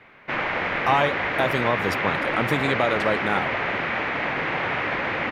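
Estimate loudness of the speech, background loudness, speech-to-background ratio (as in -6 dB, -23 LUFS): -25.5 LUFS, -25.0 LUFS, -0.5 dB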